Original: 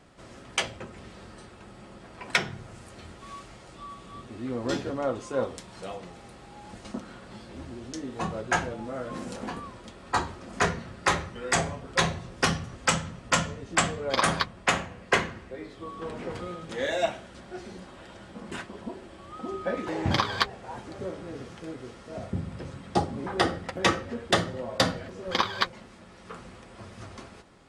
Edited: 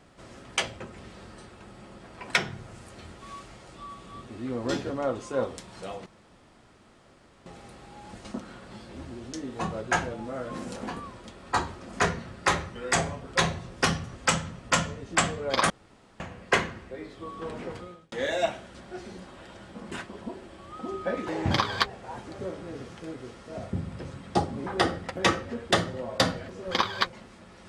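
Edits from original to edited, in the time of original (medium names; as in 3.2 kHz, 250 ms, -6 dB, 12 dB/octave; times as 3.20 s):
6.06 s: insert room tone 1.40 s
14.30–14.80 s: room tone
16.19–16.72 s: fade out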